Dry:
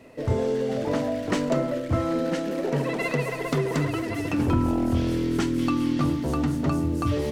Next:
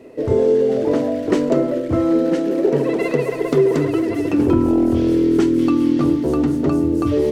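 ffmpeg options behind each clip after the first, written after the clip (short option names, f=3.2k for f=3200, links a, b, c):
-af "equalizer=f=380:w=1.4:g=14"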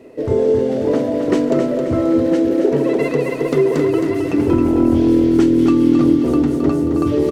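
-af "aecho=1:1:267|534|801|1068|1335:0.473|0.213|0.0958|0.0431|0.0194"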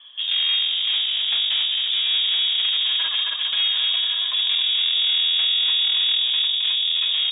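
-af "acrusher=bits=8:mix=0:aa=0.000001,aeval=exprs='(tanh(8.91*val(0)+0.75)-tanh(0.75))/8.91':c=same,lowpass=f=3.1k:t=q:w=0.5098,lowpass=f=3.1k:t=q:w=0.6013,lowpass=f=3.1k:t=q:w=0.9,lowpass=f=3.1k:t=q:w=2.563,afreqshift=-3700"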